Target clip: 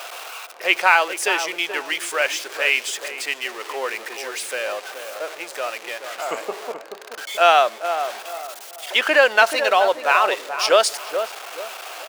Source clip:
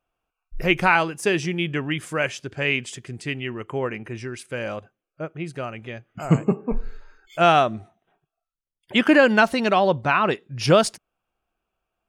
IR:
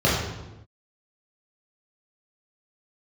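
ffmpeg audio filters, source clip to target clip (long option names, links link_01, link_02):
-filter_complex "[0:a]aeval=exprs='val(0)+0.5*0.0335*sgn(val(0))':channel_layout=same,highpass=frequency=500:width=0.5412,highpass=frequency=500:width=1.3066,equalizer=frequency=4200:width_type=o:width=2.4:gain=3,asplit=2[link_01][link_02];[link_02]adelay=430,lowpass=frequency=1000:poles=1,volume=-7dB,asplit=2[link_03][link_04];[link_04]adelay=430,lowpass=frequency=1000:poles=1,volume=0.38,asplit=2[link_05][link_06];[link_06]adelay=430,lowpass=frequency=1000:poles=1,volume=0.38,asplit=2[link_07][link_08];[link_08]adelay=430,lowpass=frequency=1000:poles=1,volume=0.38[link_09];[link_03][link_05][link_07][link_09]amix=inputs=4:normalize=0[link_10];[link_01][link_10]amix=inputs=2:normalize=0,volume=1.5dB"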